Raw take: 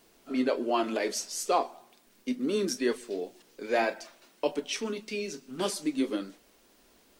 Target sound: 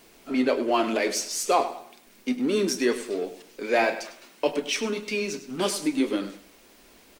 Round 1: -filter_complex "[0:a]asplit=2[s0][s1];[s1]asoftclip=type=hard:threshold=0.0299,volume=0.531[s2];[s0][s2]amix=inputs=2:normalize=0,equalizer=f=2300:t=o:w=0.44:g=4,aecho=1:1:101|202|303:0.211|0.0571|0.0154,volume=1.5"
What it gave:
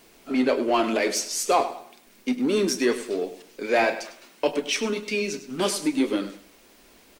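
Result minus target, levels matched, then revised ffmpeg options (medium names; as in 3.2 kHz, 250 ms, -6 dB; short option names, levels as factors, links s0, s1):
hard clipper: distortion -5 dB
-filter_complex "[0:a]asplit=2[s0][s1];[s1]asoftclip=type=hard:threshold=0.00944,volume=0.531[s2];[s0][s2]amix=inputs=2:normalize=0,equalizer=f=2300:t=o:w=0.44:g=4,aecho=1:1:101|202|303:0.211|0.0571|0.0154,volume=1.5"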